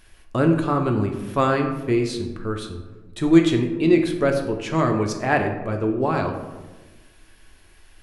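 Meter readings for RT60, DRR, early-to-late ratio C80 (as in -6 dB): 1.3 s, 3.5 dB, 9.0 dB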